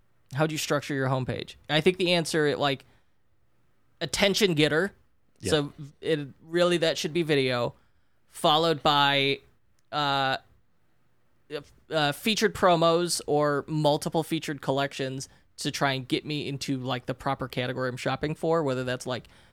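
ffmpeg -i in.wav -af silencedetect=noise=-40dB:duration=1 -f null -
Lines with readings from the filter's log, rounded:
silence_start: 2.81
silence_end: 4.01 | silence_duration: 1.20
silence_start: 10.38
silence_end: 11.51 | silence_duration: 1.13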